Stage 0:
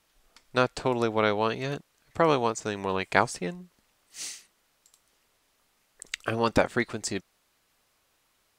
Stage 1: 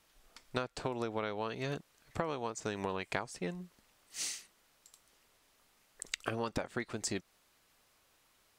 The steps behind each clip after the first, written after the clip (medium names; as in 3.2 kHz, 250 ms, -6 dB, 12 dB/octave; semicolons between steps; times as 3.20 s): compression 12:1, threshold -32 dBFS, peak gain reduction 18 dB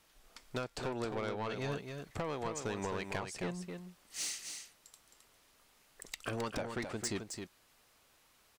saturation -31.5 dBFS, distortion -10 dB; delay 265 ms -6.5 dB; trim +1.5 dB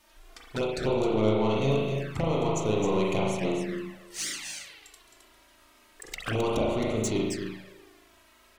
spring tank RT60 1.1 s, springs 37 ms, chirp 35 ms, DRR -3.5 dB; touch-sensitive flanger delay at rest 3.4 ms, full sweep at -31.5 dBFS; trim +8 dB